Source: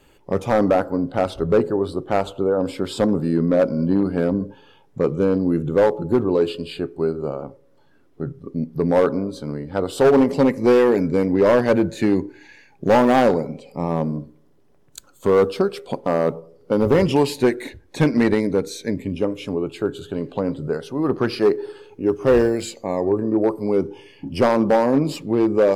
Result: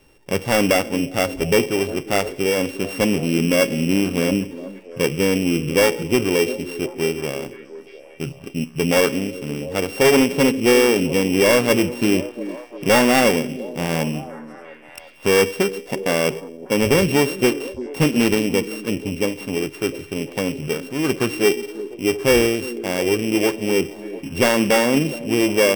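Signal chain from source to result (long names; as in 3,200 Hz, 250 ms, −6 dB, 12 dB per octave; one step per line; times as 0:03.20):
samples sorted by size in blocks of 16 samples
echo through a band-pass that steps 350 ms, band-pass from 290 Hz, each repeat 0.7 octaves, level −11 dB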